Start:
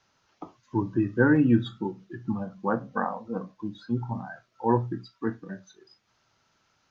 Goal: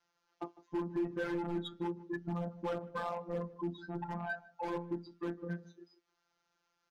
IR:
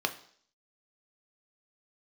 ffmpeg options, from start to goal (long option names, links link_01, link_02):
-filter_complex "[0:a]aemphasis=mode=reproduction:type=75fm,afftdn=noise_reduction=15:noise_floor=-39,bass=frequency=250:gain=-9,treble=frequency=4000:gain=8,asplit=2[link_01][link_02];[link_02]acompressor=threshold=-36dB:ratio=16,volume=-2dB[link_03];[link_01][link_03]amix=inputs=2:normalize=0,alimiter=limit=-15dB:level=0:latency=1:release=293,asoftclip=type=tanh:threshold=-30.5dB,afftfilt=real='hypot(re,im)*cos(PI*b)':imag='0':win_size=1024:overlap=0.75,volume=31dB,asoftclip=hard,volume=-31dB,asplit=2[link_04][link_05];[link_05]adelay=153,lowpass=frequency=1000:poles=1,volume=-17dB,asplit=2[link_06][link_07];[link_07]adelay=153,lowpass=frequency=1000:poles=1,volume=0.18[link_08];[link_06][link_08]amix=inputs=2:normalize=0[link_09];[link_04][link_09]amix=inputs=2:normalize=0,volume=3dB"